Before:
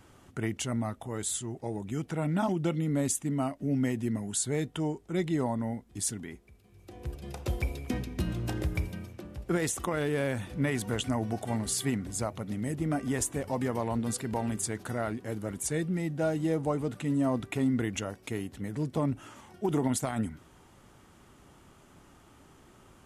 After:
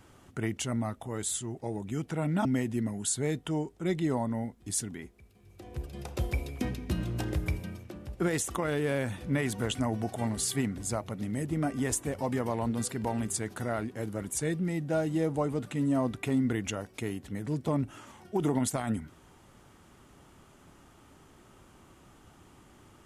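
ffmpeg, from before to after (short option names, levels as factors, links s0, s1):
-filter_complex "[0:a]asplit=2[s0][s1];[s0]atrim=end=2.452[s2];[s1]atrim=start=3.738[s3];[s2][s3]acrossfade=d=0.004:c1=hsin:c2=hsin"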